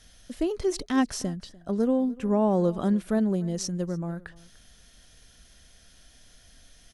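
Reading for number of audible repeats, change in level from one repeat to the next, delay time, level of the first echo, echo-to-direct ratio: 1, no steady repeat, 0.296 s, -22.0 dB, -22.0 dB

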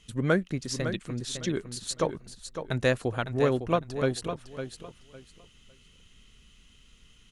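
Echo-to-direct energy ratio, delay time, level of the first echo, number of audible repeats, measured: -9.0 dB, 0.556 s, -9.0 dB, 2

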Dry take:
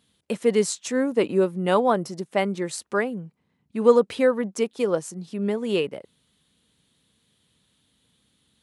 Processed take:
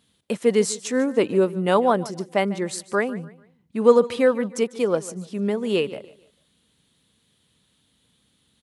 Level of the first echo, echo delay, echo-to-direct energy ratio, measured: -18.0 dB, 0.147 s, -17.5 dB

